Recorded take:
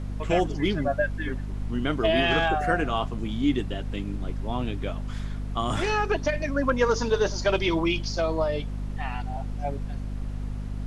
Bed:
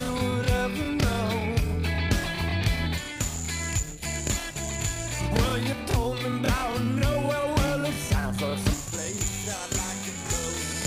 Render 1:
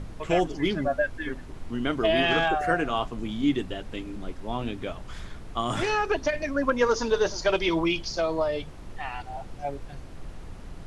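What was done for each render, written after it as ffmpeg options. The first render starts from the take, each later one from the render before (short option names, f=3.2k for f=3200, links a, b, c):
-af "bandreject=f=50:t=h:w=6,bandreject=f=100:t=h:w=6,bandreject=f=150:t=h:w=6,bandreject=f=200:t=h:w=6,bandreject=f=250:t=h:w=6"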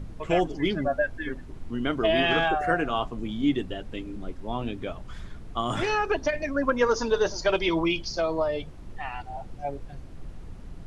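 -af "afftdn=nr=6:nf=-42"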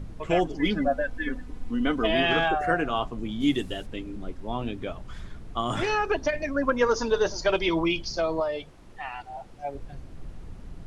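-filter_complex "[0:a]asettb=1/sr,asplit=3[a][b][c];[a]atrim=end=0.594[d];[b]atrim=start=0.59:end=2.15,asetpts=PTS-STARTPTS,afade=t=in:d=0.004:c=qsin,afade=t=out:st=1.556:d=0.004:c=qsin,aecho=1:1:4:0.67,atrim=end_sample=68796[e];[c]atrim=start=2.146[f];[d][e]acrossfade=d=0.004:c1=hsin:c2=qsin[g];[g][f]acrossfade=d=0.004:c1=qsin:c2=hsin,asplit=3[h][i][j];[h]afade=t=out:st=3.4:d=0.02[k];[i]aemphasis=mode=production:type=75kf,afade=t=in:st=3.4:d=0.02,afade=t=out:st=3.85:d=0.02[l];[j]afade=t=in:st=3.85:d=0.02[m];[k][l][m]amix=inputs=3:normalize=0,asettb=1/sr,asplit=3[n][o][p];[n]atrim=end=8.404[q];[o]atrim=start=8.4:end=9.75,asetpts=PTS-STARTPTS,afade=t=in:d=0.004:c=qsin,afade=t=out:st=1.346:d=0.004:c=qsin,lowshelf=f=240:g=-10.5[r];[p]atrim=start=9.746[s];[q][r]acrossfade=d=0.004:c1=hsin:c2=qsin[t];[t][s]acrossfade=d=0.004:c1=qsin:c2=hsin"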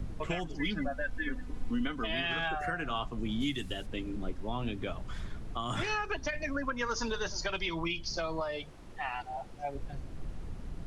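-filter_complex "[0:a]acrossover=split=210|1000|2900[a][b][c][d];[b]acompressor=threshold=-36dB:ratio=6[e];[a][e][c][d]amix=inputs=4:normalize=0,alimiter=limit=-23dB:level=0:latency=1:release=330"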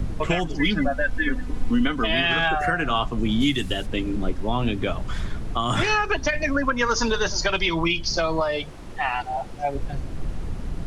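-af "volume=11.5dB"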